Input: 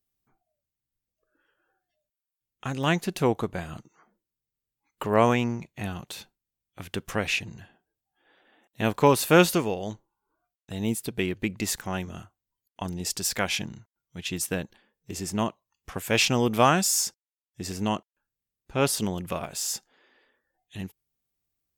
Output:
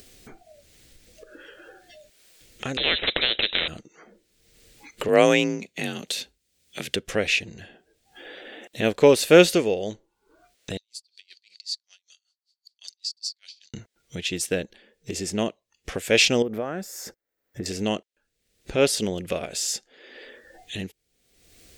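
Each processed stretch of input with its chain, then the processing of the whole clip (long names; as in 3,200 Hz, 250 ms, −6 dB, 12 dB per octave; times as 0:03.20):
0:02.77–0:03.68: voice inversion scrambler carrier 3,800 Hz + every bin compressed towards the loudest bin 4 to 1
0:05.08–0:06.96: high-shelf EQ 2,400 Hz +8 dB + frequency shifter +42 Hz
0:10.77–0:13.74: four-pole ladder band-pass 4,700 Hz, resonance 85% + tremolo with a sine in dB 5.2 Hz, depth 39 dB
0:16.42–0:17.66: downward compressor 4 to 1, threshold −28 dBFS + flat-topped bell 5,000 Hz −16 dB 2.4 octaves
whole clip: graphic EQ with 10 bands 125 Hz −6 dB, 500 Hz +8 dB, 1,000 Hz −11 dB, 2,000 Hz +4 dB, 4,000 Hz +4 dB, 8,000 Hz +4 dB, 16,000 Hz −10 dB; upward compression, threshold −28 dBFS; level +1.5 dB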